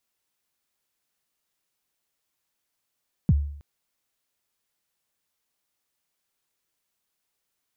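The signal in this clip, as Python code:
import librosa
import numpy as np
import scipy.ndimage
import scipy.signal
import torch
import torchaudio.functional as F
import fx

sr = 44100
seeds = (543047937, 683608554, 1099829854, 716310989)

y = fx.drum_kick(sr, seeds[0], length_s=0.32, level_db=-12.5, start_hz=210.0, end_hz=72.0, sweep_ms=38.0, decay_s=0.63, click=False)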